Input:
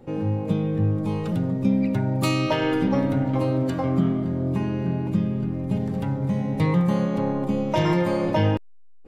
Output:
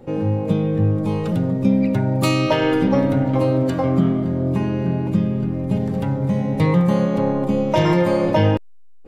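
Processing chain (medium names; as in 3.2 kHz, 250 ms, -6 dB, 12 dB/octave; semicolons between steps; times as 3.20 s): peaking EQ 530 Hz +3 dB 0.49 oct; trim +4 dB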